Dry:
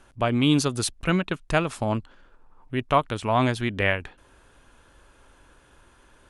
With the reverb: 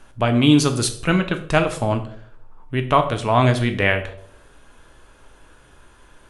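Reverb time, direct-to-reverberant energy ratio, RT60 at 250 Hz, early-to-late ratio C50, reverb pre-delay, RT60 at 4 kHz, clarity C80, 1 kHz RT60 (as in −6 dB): 0.60 s, 6.5 dB, 0.60 s, 12.0 dB, 5 ms, 0.40 s, 15.5 dB, 0.50 s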